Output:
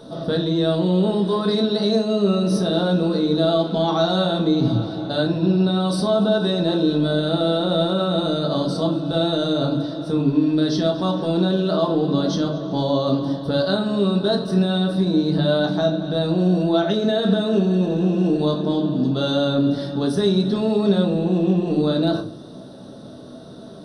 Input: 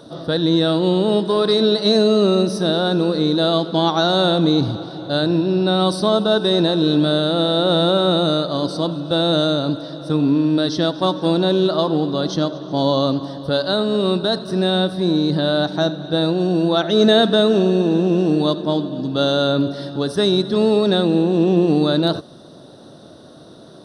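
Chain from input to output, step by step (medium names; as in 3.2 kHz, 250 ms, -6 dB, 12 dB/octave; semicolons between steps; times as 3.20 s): bass shelf 390 Hz +4 dB; peak limiter -11.5 dBFS, peak gain reduction 11 dB; simulated room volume 200 m³, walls furnished, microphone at 1.5 m; trim -3 dB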